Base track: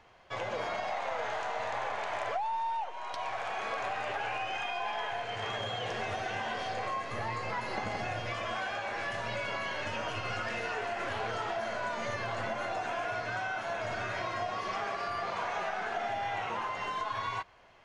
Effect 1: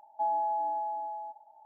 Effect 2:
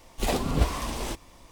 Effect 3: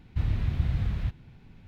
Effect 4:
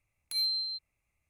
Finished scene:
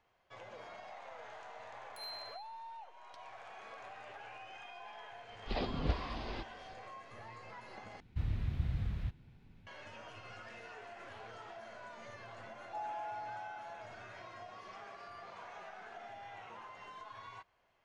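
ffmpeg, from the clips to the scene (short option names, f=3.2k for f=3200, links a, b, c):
-filter_complex "[0:a]volume=-15.5dB[a];[4:a]aecho=1:1:120|240|360|480|600:0.211|0.104|0.0507|0.0249|0.0122[b];[2:a]aresample=11025,aresample=44100[c];[a]asplit=2[d][e];[d]atrim=end=8.004[f];[3:a]atrim=end=1.67,asetpts=PTS-STARTPTS,volume=-8.5dB[g];[e]atrim=start=9.666[h];[b]atrim=end=1.29,asetpts=PTS-STARTPTS,volume=-16.5dB,afade=t=in:d=0.004:c=hsin,afade=t=out:st=1.286:d=0.004:c=hsin,adelay=1650[i];[c]atrim=end=1.51,asetpts=PTS-STARTPTS,volume=-10dB,afade=t=in:d=0.004:c=hsin,afade=t=out:st=1.506:d=0.004:c=hsin,adelay=5280[j];[1:a]atrim=end=1.65,asetpts=PTS-STARTPTS,volume=-12.5dB,afade=t=in:d=0.004:c=hsin,afade=t=out:st=1.646:d=0.004:c=hsin,adelay=12540[k];[f][g]acrossfade=d=0.004:c1=hsin:c2=hsin[l];[l][h]acrossfade=d=0.004:c1=hsin:c2=hsin[m];[m][i][j][k]amix=inputs=4:normalize=0"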